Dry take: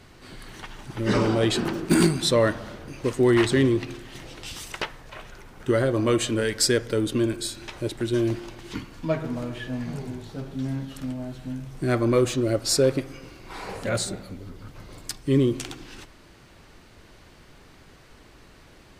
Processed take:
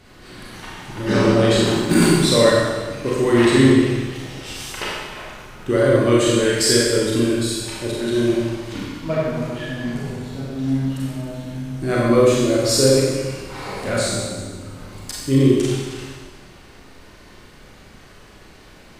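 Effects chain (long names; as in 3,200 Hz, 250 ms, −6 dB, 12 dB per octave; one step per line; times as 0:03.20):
0:12.60–0:13.38: upward compression, threshold −29 dBFS
four-comb reverb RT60 1.4 s, combs from 30 ms, DRR −5.5 dB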